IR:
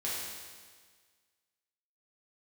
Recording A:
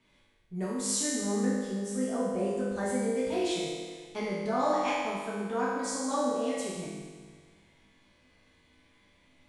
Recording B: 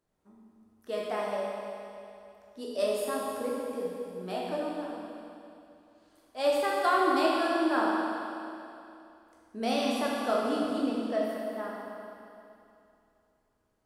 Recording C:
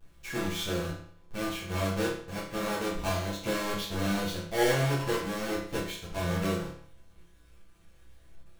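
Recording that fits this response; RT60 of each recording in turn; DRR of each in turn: A; 1.6 s, 2.7 s, 0.55 s; -8.0 dB, -4.5 dB, -10.0 dB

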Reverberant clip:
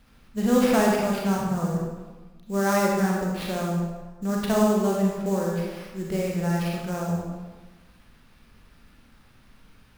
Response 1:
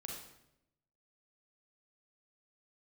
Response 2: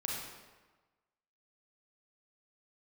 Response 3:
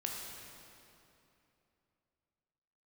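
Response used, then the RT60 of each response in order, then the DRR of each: 2; 0.85 s, 1.3 s, 2.9 s; -1.0 dB, -3.0 dB, -1.0 dB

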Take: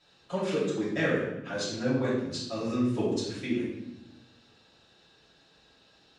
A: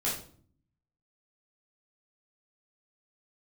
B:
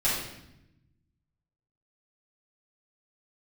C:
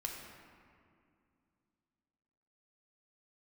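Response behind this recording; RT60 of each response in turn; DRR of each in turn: B; 0.50 s, 0.85 s, 2.4 s; -7.0 dB, -10.5 dB, -0.5 dB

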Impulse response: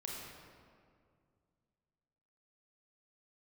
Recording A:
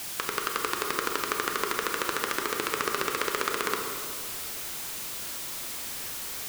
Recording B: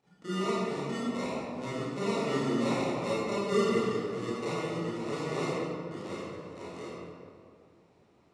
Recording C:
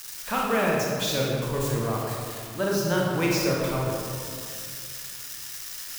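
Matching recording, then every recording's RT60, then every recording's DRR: C; 2.2 s, 2.1 s, 2.2 s; 2.5 dB, -11.0 dB, -3.5 dB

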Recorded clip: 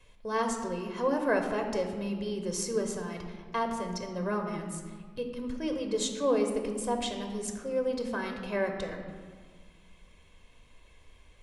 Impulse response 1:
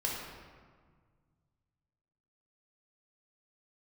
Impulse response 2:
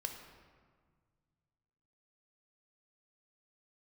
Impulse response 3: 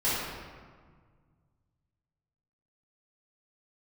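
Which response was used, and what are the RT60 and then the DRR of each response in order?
2; 1.7 s, 1.7 s, 1.7 s; -3.5 dB, 4.0 dB, -12.5 dB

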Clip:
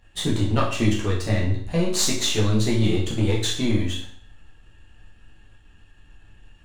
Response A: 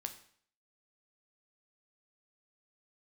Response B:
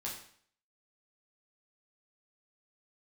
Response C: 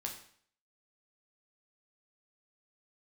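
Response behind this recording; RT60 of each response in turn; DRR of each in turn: B; 0.55 s, 0.55 s, 0.55 s; 6.0 dB, -4.5 dB, 0.5 dB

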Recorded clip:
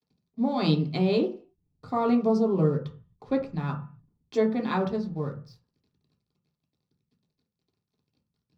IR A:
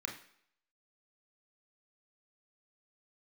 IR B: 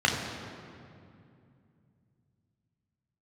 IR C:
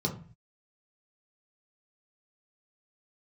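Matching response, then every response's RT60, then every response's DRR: C; no single decay rate, 2.5 s, 0.40 s; 1.5 dB, -1.0 dB, -1.0 dB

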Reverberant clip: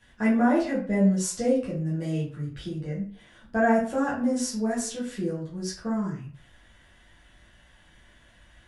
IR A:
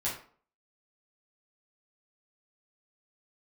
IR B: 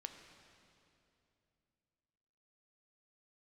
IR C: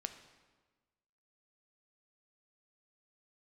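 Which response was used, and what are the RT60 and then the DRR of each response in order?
A; 0.50 s, 2.8 s, 1.3 s; -8.0 dB, 5.5 dB, 7.5 dB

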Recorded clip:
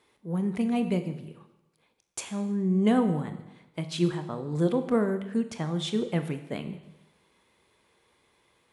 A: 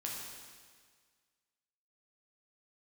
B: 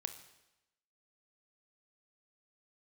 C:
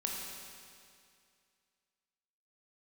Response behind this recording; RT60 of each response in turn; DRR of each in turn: B; 1.7 s, 0.95 s, 2.3 s; -3.0 dB, 8.0 dB, -1.5 dB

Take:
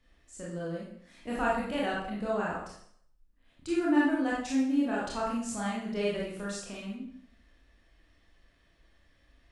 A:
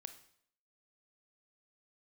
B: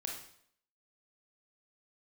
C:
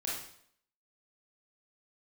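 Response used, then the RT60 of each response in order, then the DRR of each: C; 0.65 s, 0.65 s, 0.65 s; 8.5 dB, -0.5 dB, -6.0 dB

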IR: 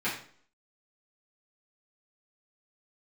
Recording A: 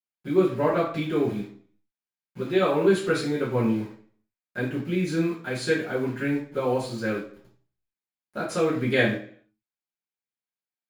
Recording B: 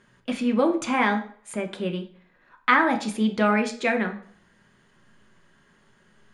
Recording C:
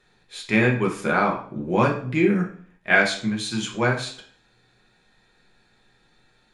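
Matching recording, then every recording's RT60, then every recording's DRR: A; 0.50 s, 0.50 s, 0.50 s; -10.5 dB, 4.0 dB, -1.5 dB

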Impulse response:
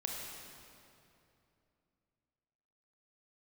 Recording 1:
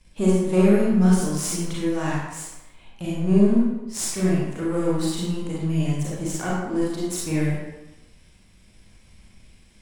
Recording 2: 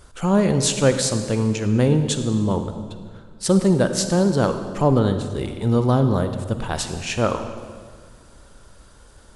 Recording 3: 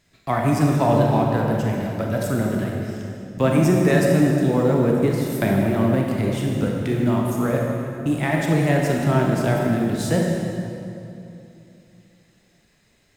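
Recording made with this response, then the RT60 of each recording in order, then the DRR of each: 3; 1.0 s, 1.8 s, 2.8 s; -6.0 dB, 8.0 dB, -1.0 dB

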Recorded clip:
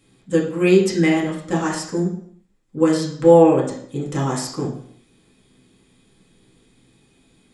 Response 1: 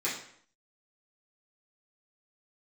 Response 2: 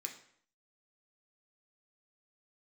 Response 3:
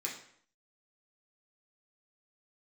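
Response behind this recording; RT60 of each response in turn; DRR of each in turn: 3; 0.60 s, 0.60 s, 0.60 s; -10.0 dB, 2.0 dB, -4.0 dB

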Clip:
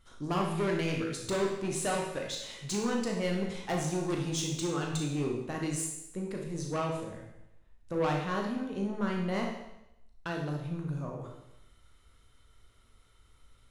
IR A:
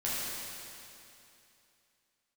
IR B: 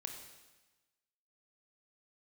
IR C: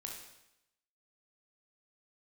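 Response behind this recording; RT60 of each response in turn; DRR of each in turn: C; 2.8 s, 1.2 s, 0.85 s; -9.0 dB, 3.0 dB, -0.5 dB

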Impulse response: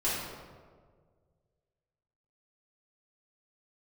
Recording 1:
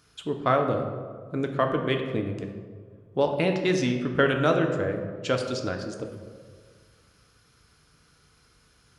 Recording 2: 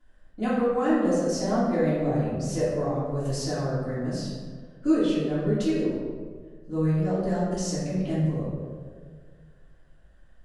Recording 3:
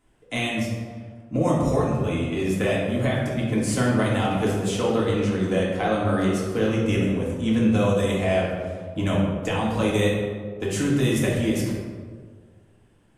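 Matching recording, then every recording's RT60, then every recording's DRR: 2; 1.7 s, 1.7 s, 1.7 s; 3.5 dB, -10.5 dB, -5.0 dB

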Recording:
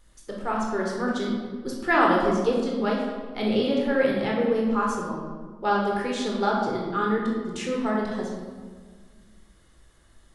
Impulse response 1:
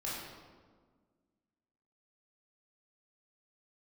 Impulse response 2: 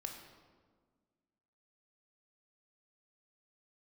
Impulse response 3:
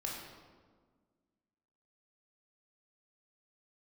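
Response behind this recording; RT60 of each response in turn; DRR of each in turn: 3; 1.6 s, 1.6 s, 1.6 s; -7.5 dB, 3.0 dB, -2.5 dB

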